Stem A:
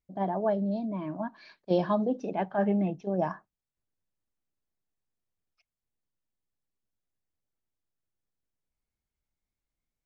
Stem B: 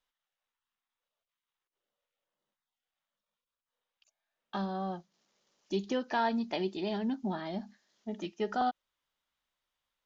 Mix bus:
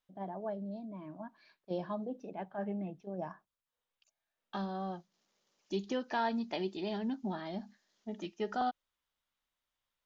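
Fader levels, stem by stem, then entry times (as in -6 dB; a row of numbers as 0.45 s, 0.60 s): -11.5 dB, -3.0 dB; 0.00 s, 0.00 s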